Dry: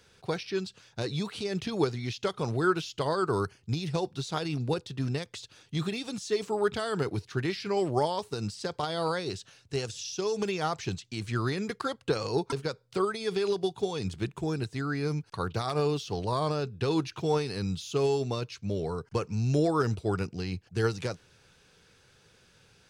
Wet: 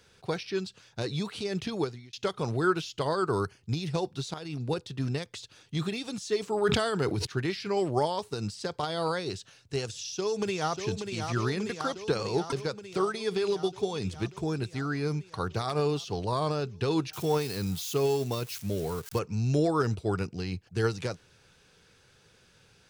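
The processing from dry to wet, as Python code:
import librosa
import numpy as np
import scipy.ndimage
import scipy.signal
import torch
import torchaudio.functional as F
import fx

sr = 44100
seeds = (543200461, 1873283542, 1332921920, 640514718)

y = fx.sustainer(x, sr, db_per_s=30.0, at=(6.52, 7.25), fade=0.02)
y = fx.echo_throw(y, sr, start_s=9.87, length_s=0.99, ms=590, feedback_pct=75, wet_db=-6.5)
y = fx.crossing_spikes(y, sr, level_db=-32.5, at=(17.13, 19.19))
y = fx.edit(y, sr, fx.fade_out_span(start_s=1.68, length_s=0.45),
    fx.fade_in_from(start_s=4.34, length_s=0.6, curve='qsin', floor_db=-12.0), tone=tone)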